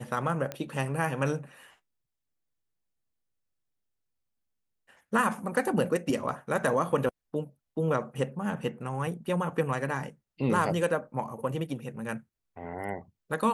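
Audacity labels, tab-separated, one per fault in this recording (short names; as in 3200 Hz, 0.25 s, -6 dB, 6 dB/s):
0.520000	0.520000	pop -19 dBFS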